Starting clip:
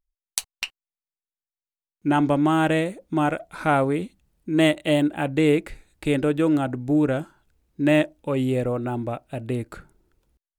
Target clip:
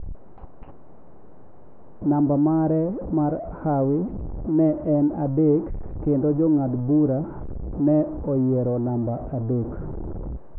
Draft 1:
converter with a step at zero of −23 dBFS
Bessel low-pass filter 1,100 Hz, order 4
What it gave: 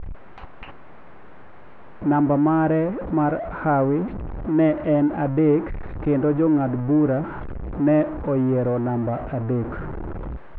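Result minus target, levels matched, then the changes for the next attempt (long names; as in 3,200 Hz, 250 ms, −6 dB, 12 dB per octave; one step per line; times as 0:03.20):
1,000 Hz band +4.5 dB
change: Bessel low-pass filter 550 Hz, order 4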